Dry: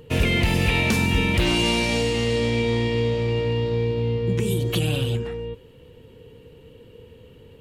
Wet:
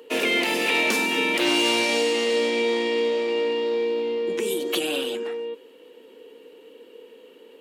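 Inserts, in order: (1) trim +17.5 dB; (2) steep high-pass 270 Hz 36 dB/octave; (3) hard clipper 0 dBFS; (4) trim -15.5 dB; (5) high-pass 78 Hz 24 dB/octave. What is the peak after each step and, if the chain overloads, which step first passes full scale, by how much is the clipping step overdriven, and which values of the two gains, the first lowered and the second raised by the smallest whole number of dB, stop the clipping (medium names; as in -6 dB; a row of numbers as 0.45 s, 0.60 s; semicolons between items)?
+7.5 dBFS, +6.0 dBFS, 0.0 dBFS, -15.5 dBFS, -12.0 dBFS; step 1, 6.0 dB; step 1 +11.5 dB, step 4 -9.5 dB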